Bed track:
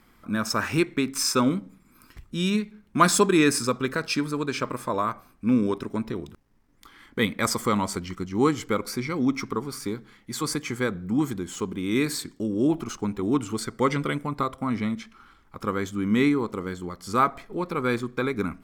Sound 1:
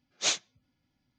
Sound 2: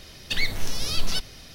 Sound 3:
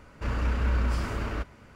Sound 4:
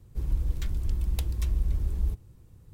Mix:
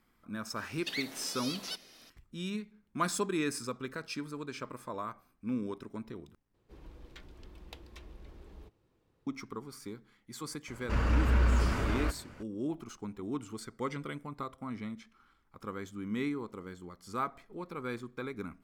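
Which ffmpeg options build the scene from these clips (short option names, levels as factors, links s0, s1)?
-filter_complex "[0:a]volume=0.224[s0];[2:a]highpass=f=230:w=0.5412,highpass=f=230:w=1.3066[s1];[4:a]acrossover=split=260 4700:gain=0.1 1 0.141[s2][s3][s4];[s2][s3][s4]amix=inputs=3:normalize=0[s5];[s0]asplit=2[s6][s7];[s6]atrim=end=6.544[s8];[s5]atrim=end=2.73,asetpts=PTS-STARTPTS,volume=0.531[s9];[s7]atrim=start=9.266[s10];[s1]atrim=end=1.54,asetpts=PTS-STARTPTS,volume=0.316,afade=t=in:d=0.004:c=hsin,afade=t=out:st=1.536:d=0.004:c=hsin,adelay=560[s11];[3:a]atrim=end=1.75,asetpts=PTS-STARTPTS,afade=t=in:d=0.004:c=hsin,afade=t=out:st=1.746:d=0.004:c=hsin,adelay=10680[s12];[s8][s9]acrossfade=d=0.004:c1=hsin:c2=hsin[s13];[s13][s10]acrossfade=d=0.004:c1=hsin:c2=hsin[s14];[s14][s11][s12]amix=inputs=3:normalize=0"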